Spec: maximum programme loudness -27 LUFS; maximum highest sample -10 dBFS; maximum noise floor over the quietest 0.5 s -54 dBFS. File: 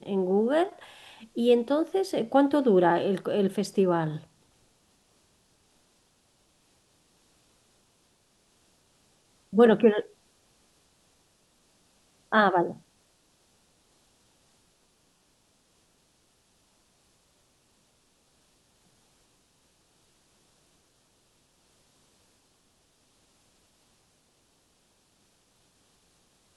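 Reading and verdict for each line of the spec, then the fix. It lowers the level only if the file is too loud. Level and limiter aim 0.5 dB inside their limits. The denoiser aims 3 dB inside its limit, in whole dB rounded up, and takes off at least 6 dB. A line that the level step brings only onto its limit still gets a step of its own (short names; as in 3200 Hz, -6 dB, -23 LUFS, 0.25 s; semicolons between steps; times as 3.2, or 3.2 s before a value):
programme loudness -24.5 LUFS: fail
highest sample -7.5 dBFS: fail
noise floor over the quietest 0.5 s -67 dBFS: OK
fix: gain -3 dB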